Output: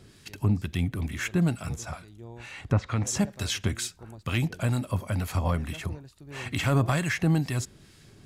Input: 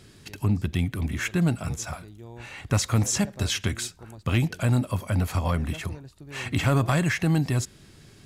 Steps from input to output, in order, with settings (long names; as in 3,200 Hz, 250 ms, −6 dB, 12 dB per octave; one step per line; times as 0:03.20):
two-band tremolo in antiphase 2.2 Hz, depth 50%, crossover 1,200 Hz
0:01.83–0:03.07: treble cut that deepens with the level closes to 2,000 Hz, closed at −21 dBFS